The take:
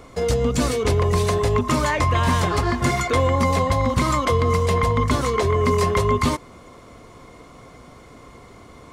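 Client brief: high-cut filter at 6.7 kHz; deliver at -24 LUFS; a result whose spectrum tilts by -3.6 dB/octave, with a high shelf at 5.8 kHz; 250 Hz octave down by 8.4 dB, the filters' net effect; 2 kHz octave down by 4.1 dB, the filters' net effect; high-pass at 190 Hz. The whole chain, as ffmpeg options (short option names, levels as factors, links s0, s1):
-af "highpass=190,lowpass=6700,equalizer=f=250:t=o:g=-8.5,equalizer=f=2000:t=o:g=-5.5,highshelf=f=5800:g=8.5"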